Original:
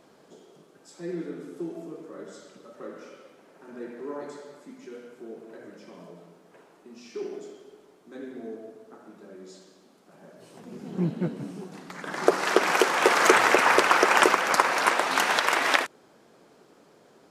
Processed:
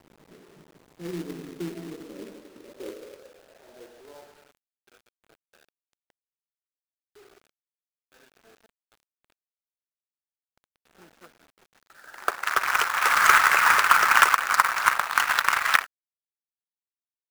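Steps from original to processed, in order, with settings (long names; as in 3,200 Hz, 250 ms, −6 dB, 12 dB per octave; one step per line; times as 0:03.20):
adaptive Wiener filter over 41 samples
high-pass filter sweep 110 Hz → 1,300 Hz, 0:01.15–0:04.66
log-companded quantiser 4 bits
level −1 dB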